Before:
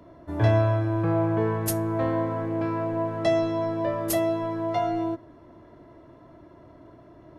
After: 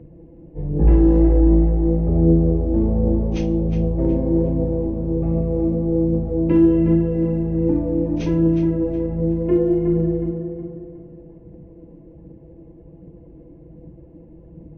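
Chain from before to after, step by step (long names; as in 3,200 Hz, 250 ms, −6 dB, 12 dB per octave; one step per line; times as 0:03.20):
drawn EQ curve 510 Hz 0 dB, 870 Hz +4 dB, 2,700 Hz −15 dB, 5,000 Hz −7 dB, 9,500 Hz −24 dB
change of speed 0.5×
in parallel at −7.5 dB: hard clipping −15 dBFS, distortion −22 dB
on the sum: phase shifter 1.3 Hz, delay 4.1 ms, feedback 35%
tape delay 365 ms, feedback 47%, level −6 dB, low-pass 2,700 Hz
level +2 dB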